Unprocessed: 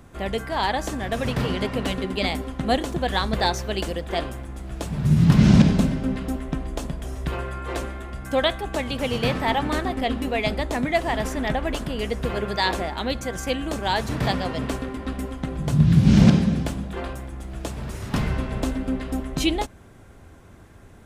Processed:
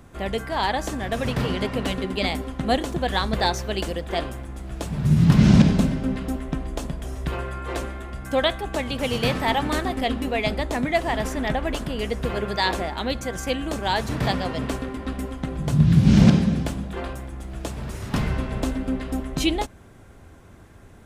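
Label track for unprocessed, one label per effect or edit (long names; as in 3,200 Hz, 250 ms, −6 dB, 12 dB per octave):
9.030000	10.120000	high-shelf EQ 4,400 Hz +5 dB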